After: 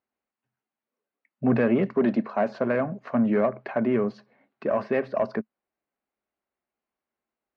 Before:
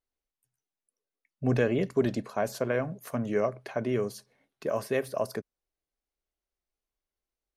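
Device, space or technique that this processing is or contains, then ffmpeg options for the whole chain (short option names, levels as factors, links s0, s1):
overdrive pedal into a guitar cabinet: -filter_complex "[0:a]asplit=2[s0][s1];[s1]highpass=f=720:p=1,volume=6.31,asoftclip=type=tanh:threshold=0.237[s2];[s0][s2]amix=inputs=2:normalize=0,lowpass=f=1000:p=1,volume=0.501,highpass=77,equalizer=f=220:t=q:w=4:g=10,equalizer=f=460:t=q:w=4:g=-4,equalizer=f=3400:t=q:w=4:g=-7,lowpass=f=4000:w=0.5412,lowpass=f=4000:w=1.3066,asettb=1/sr,asplit=3[s3][s4][s5];[s3]atrim=end=1.964[s6];[s4]atrim=start=1.96:end=2.6,asetpts=PTS-STARTPTS,afade=t=in:d=0.004:c=qsin,afade=t=out:st=0.636:d=0.004:c=qsin,highpass=170[s7];[s5]atrim=start=2.596[s8];[s6][s7]acrossfade=d=0.004:c1=hsin:c2=qsin[s9];[s9][s8]acrossfade=d=0.004:c1=qsin:c2=hsin,volume=1.26"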